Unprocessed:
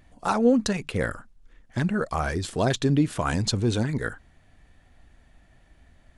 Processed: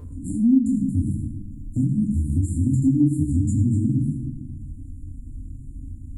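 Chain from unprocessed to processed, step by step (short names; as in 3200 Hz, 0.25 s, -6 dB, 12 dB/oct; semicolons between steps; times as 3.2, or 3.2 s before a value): brick-wall FIR band-stop 330–6900 Hz; low shelf 190 Hz +7.5 dB; small resonant body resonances 470/1000 Hz, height 17 dB, ringing for 25 ms; reverb RT60 0.75 s, pre-delay 5 ms, DRR -5.5 dB; compressor 2:1, threshold -38 dBFS, peak gain reduction 21 dB; 1.06–3.32 high shelf 9700 Hz +8 dB; gain +6.5 dB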